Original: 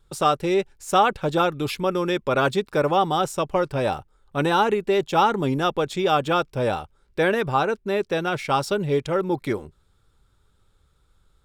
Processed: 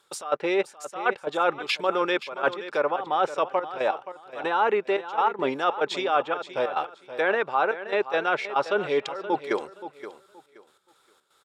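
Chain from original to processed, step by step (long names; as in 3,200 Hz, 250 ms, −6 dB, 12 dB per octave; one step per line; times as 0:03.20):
high-pass filter 560 Hz 12 dB per octave
treble cut that deepens with the level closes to 2,200 Hz, closed at −22 dBFS
reversed playback
downward compressor 6 to 1, threshold −29 dBFS, peak gain reduction 14 dB
reversed playback
gate pattern "xx.xxxxx..x.x" 142 BPM −12 dB
on a send: repeating echo 524 ms, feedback 23%, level −13 dB
on the sum: level +9 dB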